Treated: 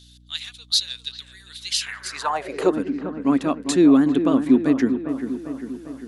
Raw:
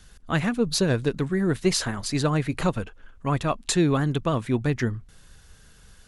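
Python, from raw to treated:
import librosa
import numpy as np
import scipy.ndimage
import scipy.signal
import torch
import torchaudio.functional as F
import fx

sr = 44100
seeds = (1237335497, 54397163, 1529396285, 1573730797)

y = fx.echo_wet_lowpass(x, sr, ms=399, feedback_pct=59, hz=1900.0, wet_db=-9)
y = fx.filter_sweep_highpass(y, sr, from_hz=3700.0, to_hz=270.0, start_s=1.67, end_s=2.8, q=5.8)
y = fx.add_hum(y, sr, base_hz=60, snr_db=30)
y = y * librosa.db_to_amplitude(-1.5)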